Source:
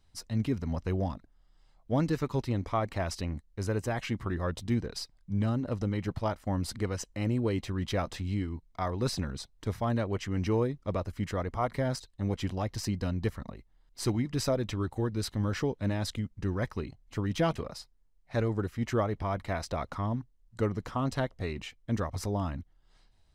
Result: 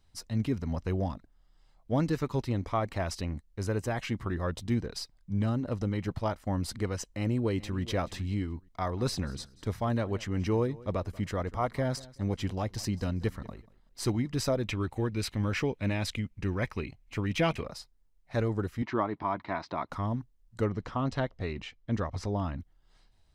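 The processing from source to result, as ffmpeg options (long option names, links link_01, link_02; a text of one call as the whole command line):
ffmpeg -i in.wav -filter_complex "[0:a]asplit=2[link_01][link_02];[link_02]afade=type=in:start_time=7.16:duration=0.01,afade=type=out:start_time=7.82:duration=0.01,aecho=0:1:430|860:0.158489|0.0237734[link_03];[link_01][link_03]amix=inputs=2:normalize=0,asplit=3[link_04][link_05][link_06];[link_04]afade=type=out:start_time=8.91:duration=0.02[link_07];[link_05]aecho=1:1:188|376:0.0891|0.0223,afade=type=in:start_time=8.91:duration=0.02,afade=type=out:start_time=14.02:duration=0.02[link_08];[link_06]afade=type=in:start_time=14.02:duration=0.02[link_09];[link_07][link_08][link_09]amix=inputs=3:normalize=0,asettb=1/sr,asplit=3[link_10][link_11][link_12];[link_10]atrim=end=14.664[link_13];[link_11]atrim=start=14.66:end=17.65,asetpts=PTS-STARTPTS,afade=type=in:duration=0.004:curve=qsin,afade=type=out:start_time=2.986:duration=0.004:curve=qsin,equalizer=frequency=2400:width_type=o:width=0.5:gain=11.5[link_14];[link_12]atrim=start=17.646[link_15];[link_13][link_14]acrossfade=duration=0.004:curve1=hsin:curve2=qsin[link_16];[link_16][link_15]acrossfade=duration=0.004:curve1=qsin:curve2=hsin,asettb=1/sr,asplit=3[link_17][link_18][link_19];[link_17]atrim=end=18.824[link_20];[link_18]atrim=start=18.82:end=19.9,asetpts=PTS-STARTPTS,afade=type=in:duration=0.004:curve=qsin,afade=type=out:start_time=1.076:duration=0.004:curve=qsin,highpass=180,equalizer=frequency=310:width_type=q:width=4:gain=5,equalizer=frequency=500:width_type=q:width=4:gain=-9,equalizer=frequency=980:width_type=q:width=4:gain=8,equalizer=frequency=3000:width_type=q:width=4:gain=-5,lowpass=frequency=4200:width=0.5412,lowpass=frequency=4200:width=1.3066[link_21];[link_19]atrim=start=19.896[link_22];[link_20][link_21]acrossfade=duration=0.004:curve1=hsin:curve2=qsin[link_23];[link_23][link_22]acrossfade=duration=0.004:curve1=qsin:curve2=hsin,asettb=1/sr,asplit=3[link_24][link_25][link_26];[link_24]atrim=end=20.644[link_27];[link_25]atrim=start=20.64:end=22.6,asetpts=PTS-STARTPTS,afade=type=in:duration=0.004:curve=qsin,afade=type=out:start_time=1.956:duration=0.004:curve=qsin,lowpass=5200[link_28];[link_26]atrim=start=22.596[link_29];[link_27][link_28]acrossfade=duration=0.004:curve1=hsin:curve2=qsin[link_30];[link_30][link_29]acrossfade=duration=0.004:curve1=qsin:curve2=hsin" out.wav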